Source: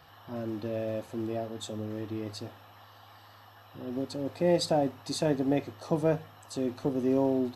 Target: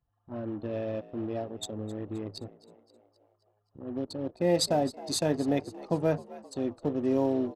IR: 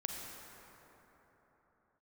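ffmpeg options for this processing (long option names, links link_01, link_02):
-filter_complex "[0:a]anlmdn=1,aemphasis=mode=production:type=cd,asplit=6[link_01][link_02][link_03][link_04][link_05][link_06];[link_02]adelay=262,afreqshift=62,volume=-18.5dB[link_07];[link_03]adelay=524,afreqshift=124,volume=-23.7dB[link_08];[link_04]adelay=786,afreqshift=186,volume=-28.9dB[link_09];[link_05]adelay=1048,afreqshift=248,volume=-34.1dB[link_10];[link_06]adelay=1310,afreqshift=310,volume=-39.3dB[link_11];[link_01][link_07][link_08][link_09][link_10][link_11]amix=inputs=6:normalize=0"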